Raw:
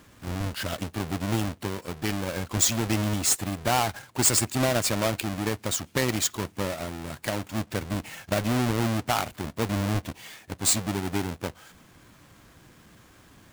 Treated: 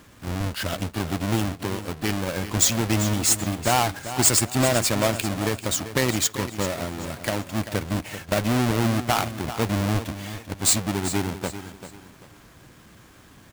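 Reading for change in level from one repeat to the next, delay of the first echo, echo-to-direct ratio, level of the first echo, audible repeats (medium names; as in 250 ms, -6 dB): -9.5 dB, 391 ms, -11.5 dB, -12.0 dB, 3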